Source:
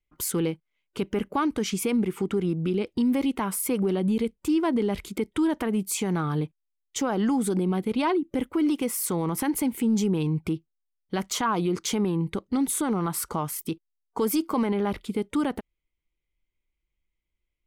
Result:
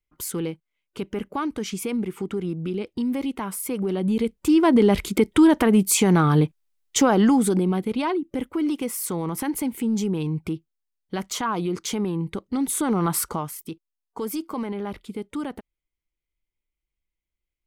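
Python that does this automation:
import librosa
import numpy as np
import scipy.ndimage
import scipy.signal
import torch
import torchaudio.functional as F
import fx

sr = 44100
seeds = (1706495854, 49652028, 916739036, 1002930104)

y = fx.gain(x, sr, db=fx.line((3.73, -2.0), (4.85, 9.0), (7.03, 9.0), (8.07, -0.5), (12.53, -0.5), (13.16, 6.0), (13.58, -4.5)))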